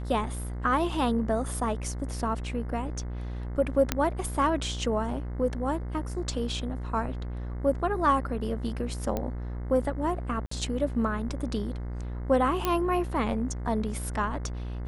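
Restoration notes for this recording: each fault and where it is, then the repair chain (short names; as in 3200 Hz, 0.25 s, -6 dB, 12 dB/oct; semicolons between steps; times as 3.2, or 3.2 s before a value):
buzz 60 Hz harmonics 36 -34 dBFS
3.92 pop -8 dBFS
9.17 pop -16 dBFS
10.46–10.51 gap 54 ms
12.65 pop -11 dBFS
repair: de-click; de-hum 60 Hz, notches 36; interpolate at 10.46, 54 ms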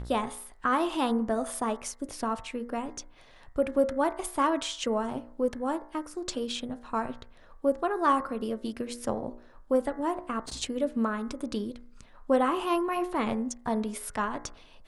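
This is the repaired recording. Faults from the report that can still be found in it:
none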